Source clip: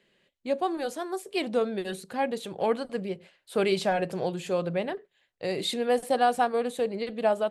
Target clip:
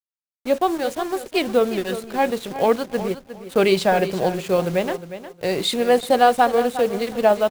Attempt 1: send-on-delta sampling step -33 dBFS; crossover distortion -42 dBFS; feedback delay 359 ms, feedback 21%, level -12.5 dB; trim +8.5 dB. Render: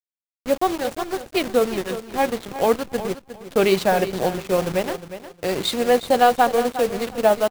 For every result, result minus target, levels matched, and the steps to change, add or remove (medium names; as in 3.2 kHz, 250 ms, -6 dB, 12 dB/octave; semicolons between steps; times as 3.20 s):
send-on-delta sampling: distortion +8 dB; crossover distortion: distortion +7 dB
change: send-on-delta sampling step -41 dBFS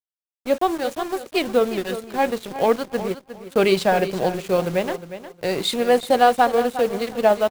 crossover distortion: distortion +6 dB
change: crossover distortion -48.5 dBFS